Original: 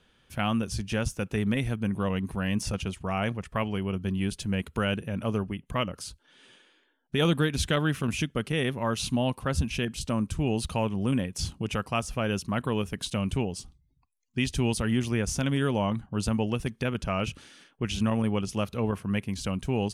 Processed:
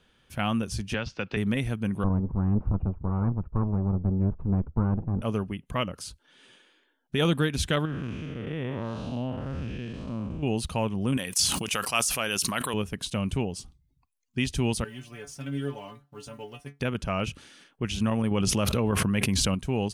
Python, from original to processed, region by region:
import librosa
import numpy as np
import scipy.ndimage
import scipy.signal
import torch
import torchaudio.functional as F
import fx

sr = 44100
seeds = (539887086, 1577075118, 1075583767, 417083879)

y = fx.chain(x, sr, fx.cheby1_lowpass(hz=4600.0, order=4),
    fx.tilt_eq(slope=2.0),
    fx.band_squash(depth_pct=100), at=(0.94, 1.37))
y = fx.chain(y, sr, fx.lower_of_two(delay_ms=0.77),
    fx.lowpass(hz=1000.0, slope=24),
    fx.low_shelf(hz=130.0, db=10.0), at=(2.04, 5.22))
y = fx.chain(y, sr, fx.spec_blur(span_ms=260.0),
    fx.spacing_loss(db_at_10k=24), at=(7.85, 10.43))
y = fx.chain(y, sr, fx.tilt_eq(slope=4.0),
    fx.sustainer(db_per_s=40.0), at=(11.17, 12.74))
y = fx.chain(y, sr, fx.law_mismatch(coded='A'),
    fx.low_shelf(hz=100.0, db=-10.5),
    fx.stiff_resonator(f0_hz=140.0, decay_s=0.21, stiffness=0.002), at=(14.84, 16.8))
y = fx.chain(y, sr, fx.notch(hz=730.0, q=23.0),
    fx.env_flatten(amount_pct=100), at=(18.31, 19.55))